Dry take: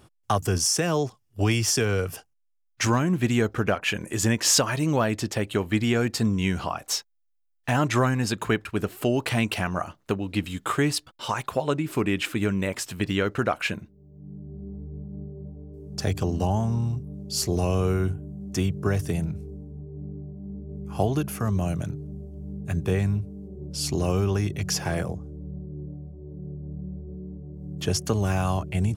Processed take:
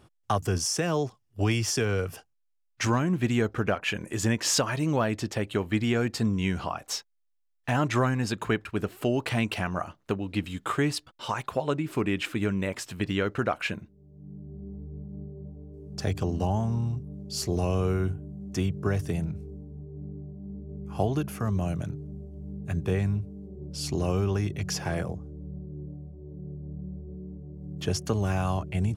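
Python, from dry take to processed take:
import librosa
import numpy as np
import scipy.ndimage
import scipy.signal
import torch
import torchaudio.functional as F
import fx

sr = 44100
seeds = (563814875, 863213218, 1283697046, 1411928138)

y = fx.high_shelf(x, sr, hz=6600.0, db=-6.5)
y = y * librosa.db_to_amplitude(-2.5)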